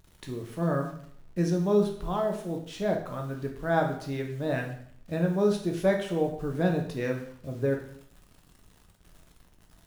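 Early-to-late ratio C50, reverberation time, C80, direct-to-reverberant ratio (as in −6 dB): 7.5 dB, 0.65 s, 11.0 dB, 1.5 dB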